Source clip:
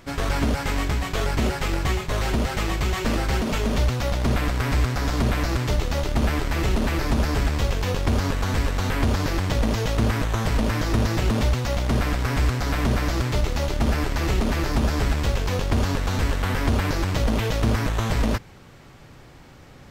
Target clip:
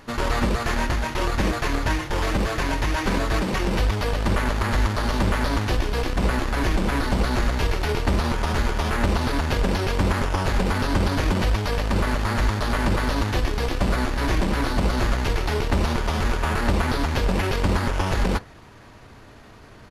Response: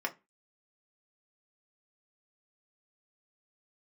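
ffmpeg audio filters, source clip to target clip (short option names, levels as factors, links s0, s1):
-filter_complex "[0:a]asplit=2[s0][s1];[s1]bass=f=250:g=-4,treble=f=4000:g=0[s2];[1:a]atrim=start_sample=2205[s3];[s2][s3]afir=irnorm=-1:irlink=0,volume=0.282[s4];[s0][s4]amix=inputs=2:normalize=0,asetrate=37084,aresample=44100,atempo=1.18921"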